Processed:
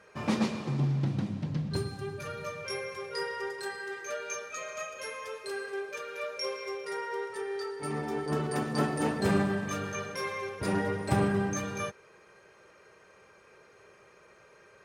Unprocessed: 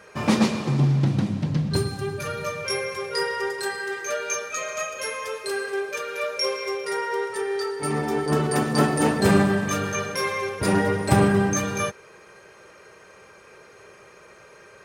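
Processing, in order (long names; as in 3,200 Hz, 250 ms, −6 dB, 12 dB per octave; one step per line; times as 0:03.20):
high-shelf EQ 7,500 Hz −6 dB
level −8.5 dB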